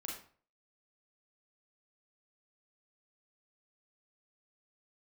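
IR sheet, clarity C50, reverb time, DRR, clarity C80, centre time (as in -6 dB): 3.5 dB, 0.45 s, -2.5 dB, 8.5 dB, 39 ms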